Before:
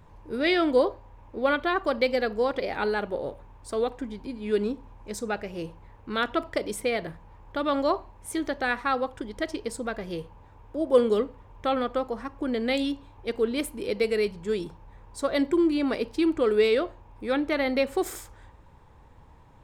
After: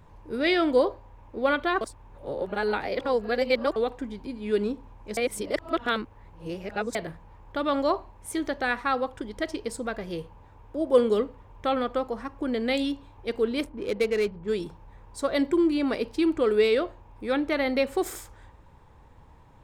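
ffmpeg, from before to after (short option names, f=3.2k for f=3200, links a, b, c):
-filter_complex "[0:a]asettb=1/sr,asplit=3[a][b][c];[a]atrim=end=13.644[d];[b]atrim=start=13.64:end=14.48,asetpts=PTS-STARTPTS,afade=t=in:d=0.004:c=qsin,afade=t=out:st=0.836:d=0.004:c=qsin,adynamicsmooth=sensitivity=6.5:basefreq=1.1k[e];[c]atrim=start=14.476[f];[d][e]acrossfade=d=0.004:c1=hsin:c2=qsin[g];[g][f]acrossfade=d=0.004:c1=qsin:c2=hsin,asplit=5[h][i][j][k][l];[h]atrim=end=1.812[m];[i]atrim=start=1.808:end=3.762,asetpts=PTS-STARTPTS,areverse[n];[j]atrim=start=3.758:end=5.172[o];[k]atrim=start=5.168:end=6.952,asetpts=PTS-STARTPTS,areverse[p];[l]atrim=start=6.948[q];[m][n]acrossfade=d=0.004:c1=hsin:c2=hsin[r];[r][o]acrossfade=d=0.004:c1=hsin:c2=hsin[s];[s][p]acrossfade=d=0.004:c1=hsin:c2=hsin[t];[t][q]acrossfade=d=0.004:c1=hsin:c2=hsin"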